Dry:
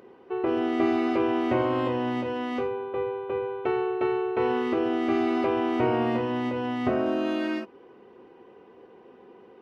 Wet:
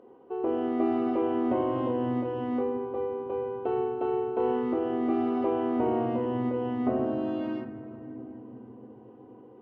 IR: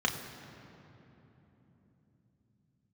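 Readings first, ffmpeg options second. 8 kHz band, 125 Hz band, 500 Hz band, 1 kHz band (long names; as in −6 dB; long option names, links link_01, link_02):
can't be measured, −2.0 dB, −2.0 dB, −3.0 dB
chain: -filter_complex "[0:a]lowpass=frequency=1000:poles=1,asplit=2[link_01][link_02];[1:a]atrim=start_sample=2205,lowpass=3000[link_03];[link_02][link_03]afir=irnorm=-1:irlink=0,volume=-10dB[link_04];[link_01][link_04]amix=inputs=2:normalize=0,volume=-4.5dB"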